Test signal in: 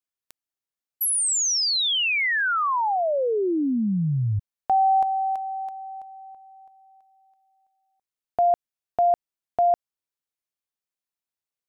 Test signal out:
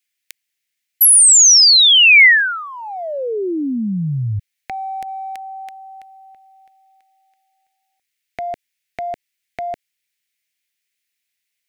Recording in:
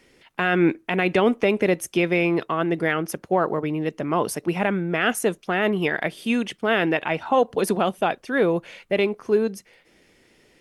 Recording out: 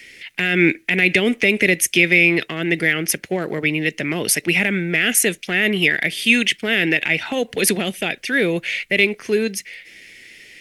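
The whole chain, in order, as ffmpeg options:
-filter_complex "[0:a]acrossover=split=470|5300[s0][s1][s2];[s1]acompressor=threshold=0.0501:ratio=6:attack=0.18:release=162:knee=2.83:detection=peak[s3];[s0][s3][s2]amix=inputs=3:normalize=0,highshelf=f=1500:t=q:w=3:g=11,volume=1.41"

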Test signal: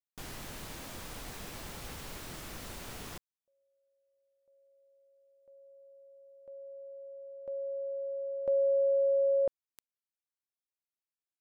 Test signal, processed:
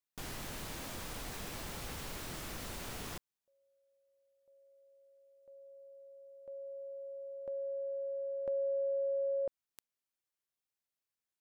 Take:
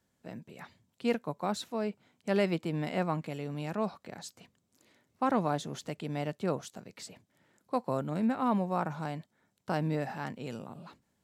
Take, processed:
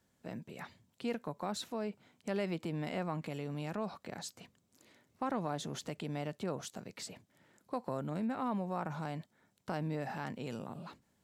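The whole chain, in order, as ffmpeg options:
-af "acompressor=threshold=0.00794:ratio=2:attack=12:release=51:detection=rms,volume=1.19"

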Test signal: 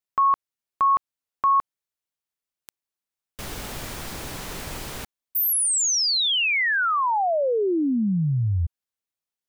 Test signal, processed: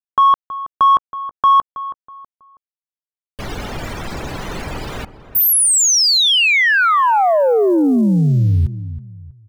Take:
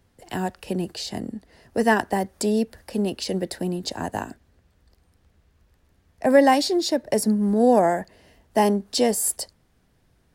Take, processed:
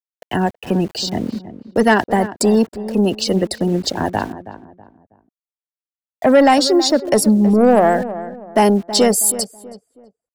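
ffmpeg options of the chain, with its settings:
-filter_complex "[0:a]afftfilt=real='re*gte(hypot(re,im),0.0178)':imag='im*gte(hypot(re,im),0.0178)':win_size=1024:overlap=0.75,asplit=2[s0][s1];[s1]alimiter=limit=0.266:level=0:latency=1:release=342,volume=0.794[s2];[s0][s2]amix=inputs=2:normalize=0,aeval=exprs='val(0)*gte(abs(val(0)),0.0112)':c=same,acontrast=75,asplit=2[s3][s4];[s4]adelay=323,lowpass=f=1400:p=1,volume=0.224,asplit=2[s5][s6];[s6]adelay=323,lowpass=f=1400:p=1,volume=0.35,asplit=2[s7][s8];[s8]adelay=323,lowpass=f=1400:p=1,volume=0.35[s9];[s3][s5][s7][s9]amix=inputs=4:normalize=0,volume=0.75"

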